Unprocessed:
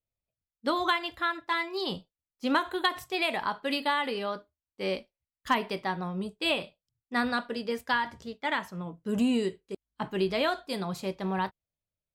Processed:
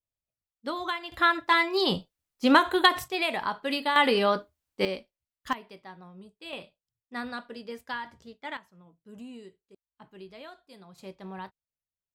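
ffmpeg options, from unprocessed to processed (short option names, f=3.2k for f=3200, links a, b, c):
-af "asetnsamples=n=441:p=0,asendcmd='1.12 volume volume 7dB;3.08 volume volume 0.5dB;3.96 volume volume 9dB;4.85 volume volume -2.5dB;5.53 volume volume -14.5dB;6.53 volume volume -7.5dB;8.57 volume volume -18dB;10.98 volume volume -10dB',volume=-5dB"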